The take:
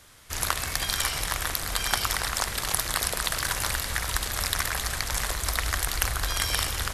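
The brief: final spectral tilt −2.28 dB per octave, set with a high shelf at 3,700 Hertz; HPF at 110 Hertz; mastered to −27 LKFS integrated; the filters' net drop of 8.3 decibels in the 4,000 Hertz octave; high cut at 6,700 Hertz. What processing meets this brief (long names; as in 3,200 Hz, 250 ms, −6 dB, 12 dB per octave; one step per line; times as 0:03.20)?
high-pass filter 110 Hz
low-pass filter 6,700 Hz
high-shelf EQ 3,700 Hz −4.5 dB
parametric band 4,000 Hz −7 dB
level +5.5 dB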